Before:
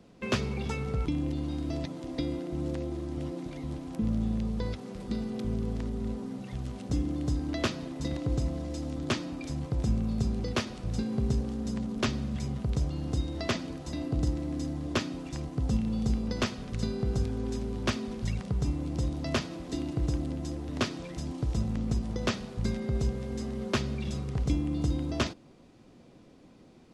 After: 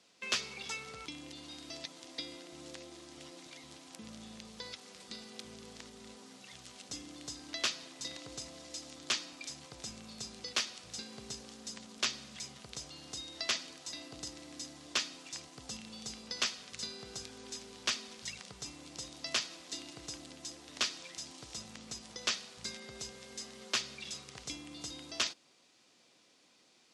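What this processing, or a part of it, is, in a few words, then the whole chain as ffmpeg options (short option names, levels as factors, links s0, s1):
piezo pickup straight into a mixer: -af "lowpass=6700,aderivative,volume=2.99"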